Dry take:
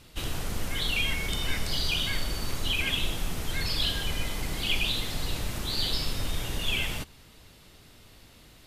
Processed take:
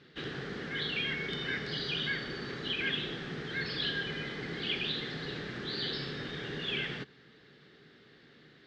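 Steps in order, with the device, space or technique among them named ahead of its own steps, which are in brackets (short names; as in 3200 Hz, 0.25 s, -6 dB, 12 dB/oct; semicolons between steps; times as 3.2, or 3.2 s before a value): guitar cabinet (speaker cabinet 97–4100 Hz, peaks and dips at 180 Hz -5 dB, 410 Hz +8 dB, 640 Hz -7 dB, 960 Hz -9 dB, 1700 Hz +10 dB, 2600 Hz -6 dB); resonant low shelf 120 Hz -7 dB, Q 3; gain -3 dB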